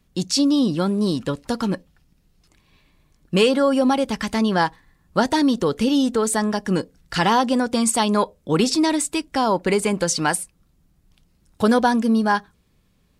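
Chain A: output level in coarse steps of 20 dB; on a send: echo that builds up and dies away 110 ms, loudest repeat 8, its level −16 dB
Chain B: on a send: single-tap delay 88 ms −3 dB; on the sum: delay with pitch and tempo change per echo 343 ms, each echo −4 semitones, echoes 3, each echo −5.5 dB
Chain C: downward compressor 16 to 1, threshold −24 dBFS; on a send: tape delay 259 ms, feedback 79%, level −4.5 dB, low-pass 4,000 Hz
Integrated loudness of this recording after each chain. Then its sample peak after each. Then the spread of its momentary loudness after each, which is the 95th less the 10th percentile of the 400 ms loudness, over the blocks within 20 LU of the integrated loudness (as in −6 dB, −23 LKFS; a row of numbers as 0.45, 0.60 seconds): −23.5, −18.5, −28.0 LKFS; −7.0, −3.0, −12.5 dBFS; 9, 10, 11 LU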